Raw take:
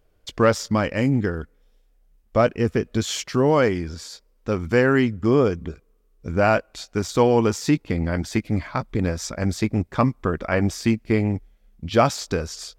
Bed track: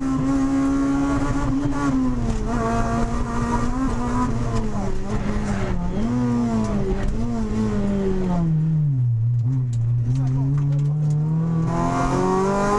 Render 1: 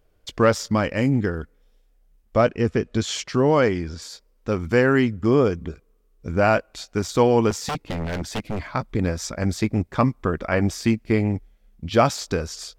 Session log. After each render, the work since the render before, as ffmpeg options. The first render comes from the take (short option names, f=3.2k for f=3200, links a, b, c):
-filter_complex "[0:a]asettb=1/sr,asplit=3[a][b][c];[a]atrim=end=2.414[d];[b]atrim=start=2.41:end=4.02,asetpts=PTS-STARTPTS,afade=t=in:d=0.004:c=qsin,afade=t=out:st=1.606:d=0.004:c=qsin,lowpass=8.1k[e];[c]atrim=start=4.016[f];[d][e]acrossfade=d=0.004:c1=hsin:c2=qsin[g];[g][f]acrossfade=d=0.004:c1=qsin:c2=hsin,asettb=1/sr,asplit=3[h][i][j];[h]atrim=end=7.504[k];[i]atrim=start=7.5:end=8.7,asetpts=PTS-STARTPTS,afade=t=in:d=0.004:c=qsin,afade=t=out:st=1.196:d=0.004:c=qsin,aeval=exprs='0.0944*(abs(mod(val(0)/0.0944+3,4)-2)-1)':c=same[l];[j]atrim=start=8.696[m];[k][l]acrossfade=d=0.004:c1=hsin:c2=qsin[n];[n][m]acrossfade=d=0.004:c1=qsin:c2=hsin"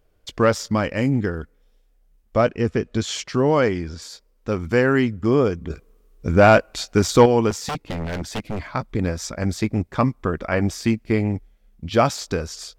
-filter_complex "[0:a]asettb=1/sr,asplit=3[a][b][c];[a]atrim=end=5.704[d];[b]atrim=start=5.7:end=7.26,asetpts=PTS-STARTPTS,afade=t=in:d=0.004:c=qsin,afade=t=out:st=1.556:d=0.004:c=qsin,acontrast=86[e];[c]atrim=start=7.256[f];[d][e]acrossfade=d=0.004:c1=hsin:c2=qsin[g];[g][f]acrossfade=d=0.004:c1=qsin:c2=hsin"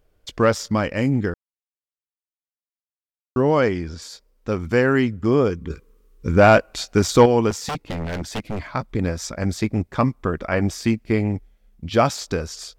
-filter_complex "[0:a]asettb=1/sr,asplit=3[a][b][c];[a]atrim=end=5.504[d];[b]atrim=start=5.5:end=6.38,asetpts=PTS-STARTPTS,afade=t=in:d=0.004:c=qsin,afade=t=out:st=0.876:d=0.004:c=qsin,asuperstop=centerf=680:order=4:qfactor=2.5[e];[c]atrim=start=6.376[f];[d][e]acrossfade=d=0.004:c1=hsin:c2=qsin[g];[g][f]acrossfade=d=0.004:c1=qsin:c2=hsin,asplit=3[h][i][j];[h]atrim=end=1.34,asetpts=PTS-STARTPTS,afade=t=out:st=1.336:d=0.004:c=hsin[k];[i]atrim=start=1.34:end=3.36,asetpts=PTS-STARTPTS,volume=0[l];[j]atrim=start=3.36,asetpts=PTS-STARTPTS,afade=t=in:d=0.004:c=hsin[m];[k][l][m]concat=n=3:v=0:a=1"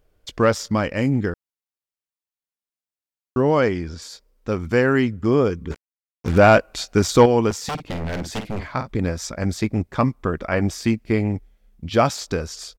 -filter_complex "[0:a]asettb=1/sr,asplit=3[a][b][c];[a]atrim=end=5.714[d];[b]atrim=start=5.71:end=6.38,asetpts=PTS-STARTPTS,afade=t=in:d=0.004:c=qsin,afade=t=out:st=0.666:d=0.004:c=qsin,acrusher=bits=4:mix=0:aa=0.5[e];[c]atrim=start=6.376[f];[d][e]acrossfade=d=0.004:c1=hsin:c2=qsin[g];[g][f]acrossfade=d=0.004:c1=qsin:c2=hsin,asplit=3[h][i][j];[h]afade=t=out:st=7.77:d=0.02[k];[i]asplit=2[l][m];[m]adelay=50,volume=-9dB[n];[l][n]amix=inputs=2:normalize=0,afade=t=in:st=7.77:d=0.02,afade=t=out:st=8.89:d=0.02[o];[j]afade=t=in:st=8.89:d=0.02[p];[k][o][p]amix=inputs=3:normalize=0"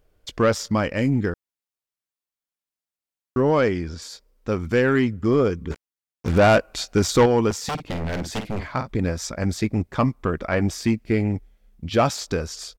-af "asoftclip=type=tanh:threshold=-9dB"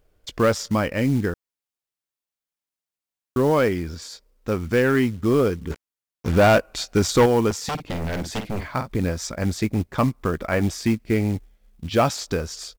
-af "acrusher=bits=6:mode=log:mix=0:aa=0.000001"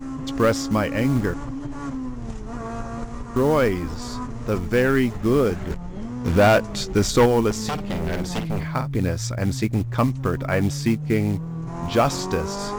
-filter_complex "[1:a]volume=-9.5dB[a];[0:a][a]amix=inputs=2:normalize=0"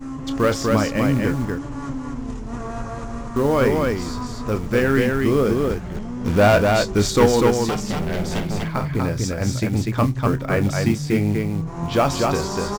-af "aecho=1:1:29.15|244.9:0.282|0.708"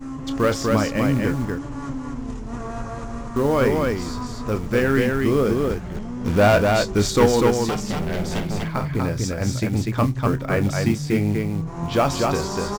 -af "volume=-1dB"